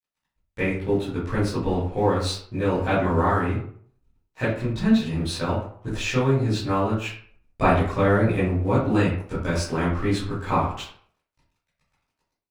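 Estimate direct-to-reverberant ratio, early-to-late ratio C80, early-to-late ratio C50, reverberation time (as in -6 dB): -12.5 dB, 8.0 dB, 3.5 dB, 0.55 s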